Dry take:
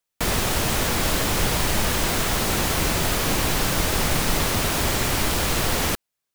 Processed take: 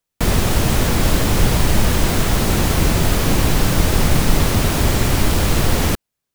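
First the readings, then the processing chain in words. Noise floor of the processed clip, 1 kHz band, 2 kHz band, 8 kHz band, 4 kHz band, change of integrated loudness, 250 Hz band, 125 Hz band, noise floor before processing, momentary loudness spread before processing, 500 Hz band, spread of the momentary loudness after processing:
−81 dBFS, +2.5 dB, +1.5 dB, +1.0 dB, +1.0 dB, +4.5 dB, +7.5 dB, +9.5 dB, −82 dBFS, 0 LU, +4.5 dB, 1 LU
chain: low-shelf EQ 380 Hz +9.5 dB
level +1 dB

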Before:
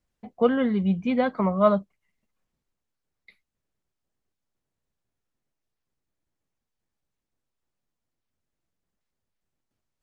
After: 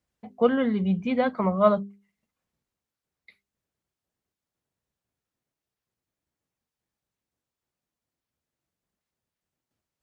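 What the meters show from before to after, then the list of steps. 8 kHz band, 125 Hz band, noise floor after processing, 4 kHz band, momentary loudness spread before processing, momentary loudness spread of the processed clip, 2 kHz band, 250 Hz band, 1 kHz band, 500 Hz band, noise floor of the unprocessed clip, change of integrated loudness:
can't be measured, −1.0 dB, below −85 dBFS, 0.0 dB, 4 LU, 5 LU, 0.0 dB, −1.0 dB, 0.0 dB, 0.0 dB, −84 dBFS, −0.5 dB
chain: high-pass filter 52 Hz
mains-hum notches 50/100/150/200/250/300/350/400 Hz

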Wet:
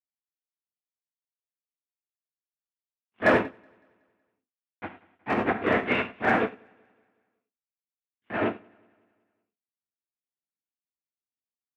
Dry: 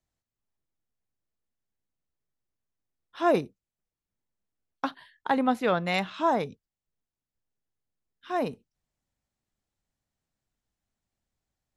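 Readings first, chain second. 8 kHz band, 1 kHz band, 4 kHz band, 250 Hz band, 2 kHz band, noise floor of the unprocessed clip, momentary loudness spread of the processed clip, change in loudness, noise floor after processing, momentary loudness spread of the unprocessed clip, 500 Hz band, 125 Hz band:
can't be measured, −1.0 dB, −2.0 dB, +0.5 dB, +8.0 dB, below −85 dBFS, 20 LU, +2.0 dB, below −85 dBFS, 10 LU, +1.0 dB, +1.0 dB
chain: lower of the sound and its delayed copy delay 0.33 ms
linear-prediction vocoder at 8 kHz whisper
in parallel at −6 dB: fuzz pedal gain 33 dB, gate −42 dBFS
on the sum: loudspeaker in its box 220–2,500 Hz, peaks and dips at 550 Hz −6 dB, 840 Hz −3 dB, 1,600 Hz +3 dB
hard clipping −11.5 dBFS, distortion −31 dB
on a send: repeating echo 186 ms, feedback 51%, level −15.5 dB
on the sum: reverb whose tail is shaped and stops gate 130 ms flat, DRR 1 dB
expander for the loud parts 2.5 to 1, over −29 dBFS

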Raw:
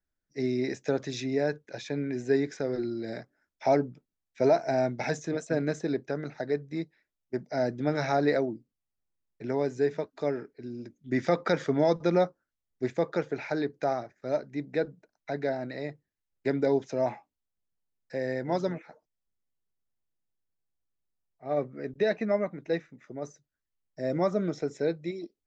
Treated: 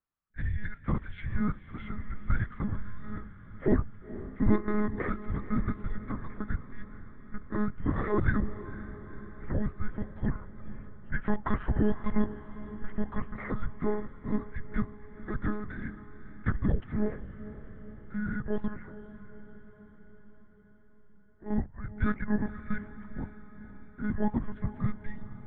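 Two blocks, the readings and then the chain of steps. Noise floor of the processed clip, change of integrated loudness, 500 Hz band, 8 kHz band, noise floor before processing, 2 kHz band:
−53 dBFS, −4.0 dB, −11.0 dB, can't be measured, below −85 dBFS, −2.0 dB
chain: single-sideband voice off tune −350 Hz 230–2,900 Hz
one-pitch LPC vocoder at 8 kHz 210 Hz
feedback delay with all-pass diffusion 488 ms, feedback 62%, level −14 dB

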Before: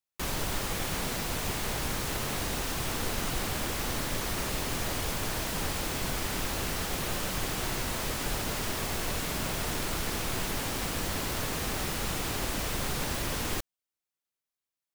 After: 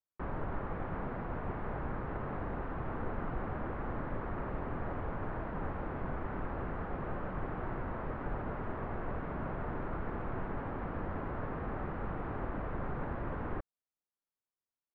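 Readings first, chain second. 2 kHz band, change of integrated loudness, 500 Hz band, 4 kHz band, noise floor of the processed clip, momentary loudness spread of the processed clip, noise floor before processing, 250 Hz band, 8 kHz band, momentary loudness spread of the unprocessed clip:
−10.5 dB, −8.0 dB, −3.5 dB, −32.0 dB, below −85 dBFS, 1 LU, below −85 dBFS, −3.5 dB, below −40 dB, 0 LU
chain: low-pass filter 1,500 Hz 24 dB per octave
level −3.5 dB

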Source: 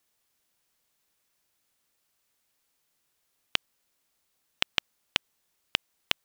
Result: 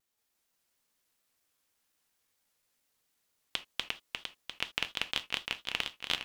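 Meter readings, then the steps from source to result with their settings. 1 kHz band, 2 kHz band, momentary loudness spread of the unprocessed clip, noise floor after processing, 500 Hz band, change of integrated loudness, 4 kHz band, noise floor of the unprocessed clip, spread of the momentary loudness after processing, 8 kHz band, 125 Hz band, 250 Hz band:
−2.0 dB, −1.5 dB, 3 LU, −80 dBFS, −2.0 dB, −4.0 dB, −2.5 dB, −76 dBFS, 7 LU, −2.0 dB, −2.5 dB, −2.0 dB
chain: feedback delay that plays each chunk backwards 175 ms, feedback 79%, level 0 dB
reverb whose tail is shaped and stops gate 100 ms falling, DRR 8.5 dB
pitch modulation by a square or saw wave square 4.3 Hz, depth 100 cents
level −8 dB

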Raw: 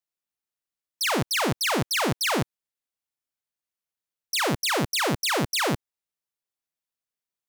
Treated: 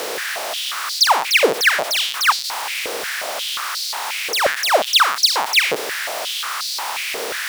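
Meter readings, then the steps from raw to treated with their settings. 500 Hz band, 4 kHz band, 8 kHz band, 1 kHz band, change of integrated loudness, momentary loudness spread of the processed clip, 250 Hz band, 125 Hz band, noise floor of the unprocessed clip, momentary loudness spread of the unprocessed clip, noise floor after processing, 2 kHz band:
+8.0 dB, +11.5 dB, +8.0 dB, +10.0 dB, +6.5 dB, 10 LU, −6.0 dB, below −15 dB, below −85 dBFS, 5 LU, −27 dBFS, +11.0 dB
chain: compressor on every frequency bin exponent 0.4
power curve on the samples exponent 0.35
high-pass on a step sequencer 5.6 Hz 460–4,400 Hz
level −6 dB

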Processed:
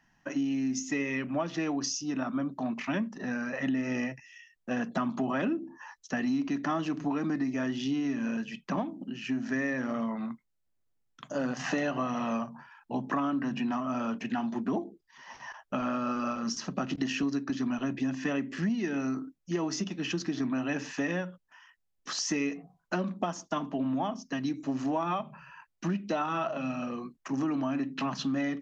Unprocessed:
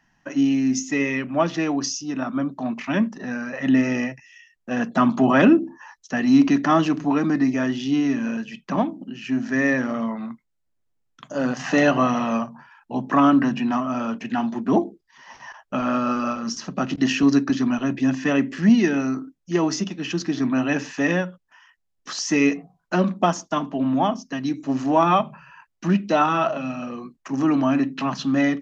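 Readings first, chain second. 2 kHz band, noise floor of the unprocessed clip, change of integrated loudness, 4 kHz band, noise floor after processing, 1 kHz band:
−9.5 dB, −73 dBFS, −10.5 dB, −7.0 dB, −76 dBFS, −11.0 dB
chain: downward compressor 6 to 1, threshold −24 dBFS, peak gain reduction 13 dB
level −3.5 dB

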